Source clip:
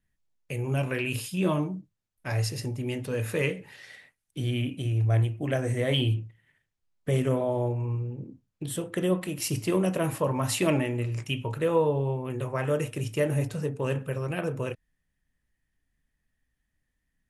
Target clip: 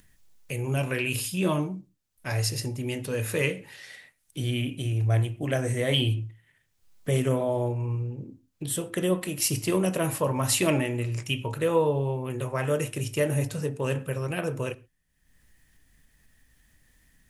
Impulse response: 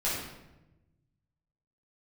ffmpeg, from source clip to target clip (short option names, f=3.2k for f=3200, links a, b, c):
-filter_complex "[0:a]highshelf=f=3.6k:g=7,acompressor=mode=upward:threshold=-47dB:ratio=2.5,asplit=2[a][b];[1:a]atrim=start_sample=2205,atrim=end_sample=6174[c];[b][c]afir=irnorm=-1:irlink=0,volume=-26.5dB[d];[a][d]amix=inputs=2:normalize=0"